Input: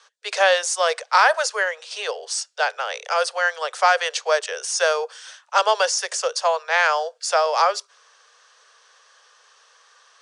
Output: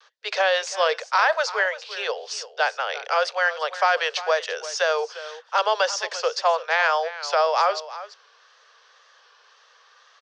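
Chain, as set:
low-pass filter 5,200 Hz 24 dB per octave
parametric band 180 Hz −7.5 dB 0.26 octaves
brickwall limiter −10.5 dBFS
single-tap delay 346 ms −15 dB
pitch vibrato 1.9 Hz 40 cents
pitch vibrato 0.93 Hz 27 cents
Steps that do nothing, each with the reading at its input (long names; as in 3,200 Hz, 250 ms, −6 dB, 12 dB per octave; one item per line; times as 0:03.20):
parametric band 180 Hz: nothing at its input below 360 Hz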